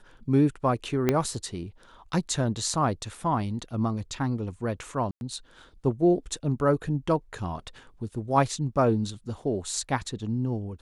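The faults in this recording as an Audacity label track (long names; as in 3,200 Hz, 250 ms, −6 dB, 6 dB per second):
1.090000	1.090000	click −9 dBFS
5.110000	5.210000	drop-out 101 ms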